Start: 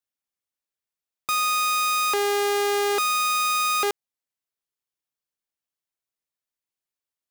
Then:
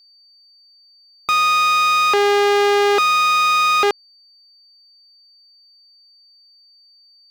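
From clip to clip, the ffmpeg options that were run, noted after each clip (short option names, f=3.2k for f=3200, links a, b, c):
-filter_complex "[0:a]acrossover=split=5300[a][b];[b]acompressor=threshold=-45dB:ratio=4:attack=1:release=60[c];[a][c]amix=inputs=2:normalize=0,aeval=exprs='val(0)+0.00141*sin(2*PI*4600*n/s)':c=same,volume=8dB"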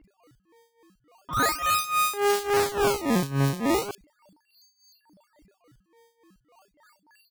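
-filter_complex "[0:a]tremolo=f=3.5:d=0.85,acrusher=samples=18:mix=1:aa=0.000001:lfo=1:lforange=28.8:lforate=0.37,acrossover=split=3100[a][b];[b]adelay=40[c];[a][c]amix=inputs=2:normalize=0,volume=-5dB"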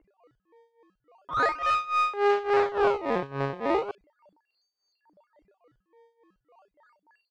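-filter_complex "[0:a]acrossover=split=3500[a][b];[b]acompressor=threshold=-47dB:ratio=4:attack=1:release=60[c];[a][c]amix=inputs=2:normalize=0,lowshelf=f=330:t=q:w=1.5:g=-9.5,adynamicsmooth=sensitivity=1.5:basefreq=2.1k"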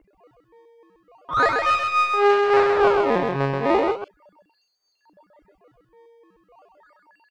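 -af "aecho=1:1:131:0.631,volume=6dB"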